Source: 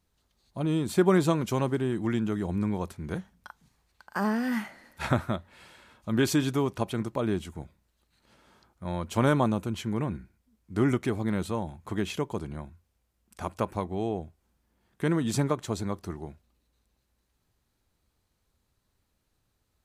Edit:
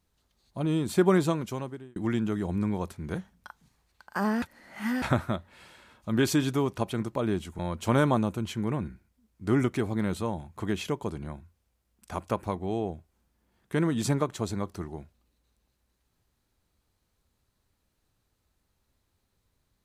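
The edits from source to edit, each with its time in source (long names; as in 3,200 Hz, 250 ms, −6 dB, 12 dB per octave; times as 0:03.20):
0:01.11–0:01.96: fade out
0:04.42–0:05.02: reverse
0:07.59–0:08.88: remove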